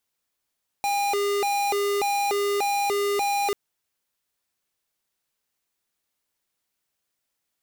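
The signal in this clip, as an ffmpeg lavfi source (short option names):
-f lavfi -i "aevalsrc='0.0631*(2*lt(mod((606.5*t+201.5/1.7*(0.5-abs(mod(1.7*t,1)-0.5))),1),0.5)-1)':d=2.69:s=44100"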